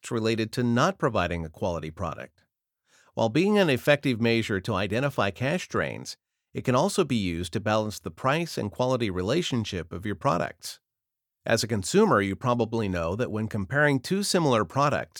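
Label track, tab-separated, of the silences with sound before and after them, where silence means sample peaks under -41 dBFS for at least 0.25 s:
2.260000	3.170000	silence
6.130000	6.550000	silence
10.750000	11.460000	silence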